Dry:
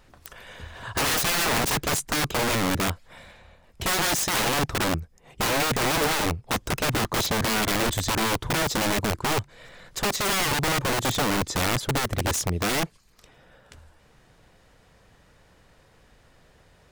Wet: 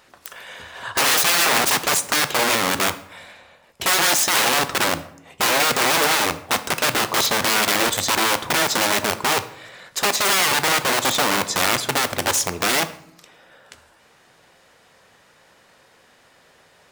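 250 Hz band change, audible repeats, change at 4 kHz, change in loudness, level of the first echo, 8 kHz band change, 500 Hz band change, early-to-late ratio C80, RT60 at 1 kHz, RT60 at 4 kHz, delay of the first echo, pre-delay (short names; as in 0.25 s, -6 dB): -0.5 dB, none, +7.0 dB, +6.0 dB, none, +7.5 dB, +3.5 dB, 17.5 dB, 0.70 s, 0.45 s, none, 5 ms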